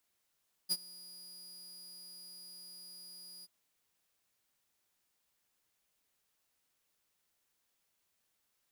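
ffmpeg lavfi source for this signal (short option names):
-f lavfi -i "aevalsrc='0.0562*(2*mod(4880*t,1)-1)':d=2.781:s=44100,afade=t=in:d=0.029,afade=t=out:st=0.029:d=0.044:silence=0.0794,afade=t=out:st=2.75:d=0.031"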